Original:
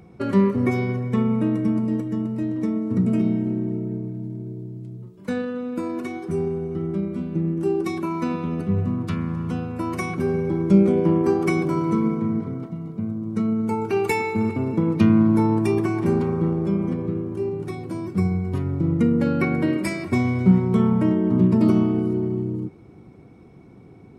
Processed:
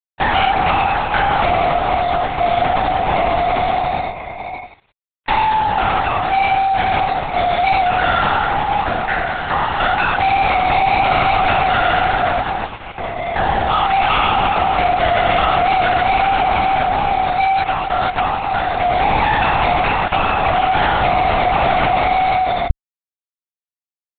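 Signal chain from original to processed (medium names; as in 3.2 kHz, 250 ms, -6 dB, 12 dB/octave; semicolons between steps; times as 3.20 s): mistuned SSB +380 Hz 370–2000 Hz; fuzz box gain 37 dB, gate -43 dBFS; LPC vocoder at 8 kHz whisper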